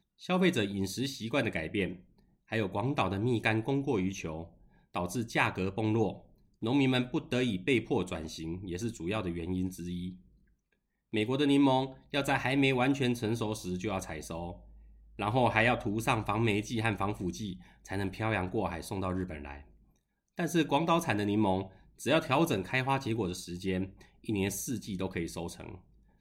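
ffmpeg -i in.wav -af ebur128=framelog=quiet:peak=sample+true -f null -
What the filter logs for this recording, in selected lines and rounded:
Integrated loudness:
  I:         -31.6 LUFS
  Threshold: -42.2 LUFS
Loudness range:
  LRA:         5.1 LU
  Threshold: -52.2 LUFS
  LRA low:   -35.2 LUFS
  LRA high:  -30.0 LUFS
Sample peak:
  Peak:      -10.6 dBFS
True peak:
  Peak:      -10.6 dBFS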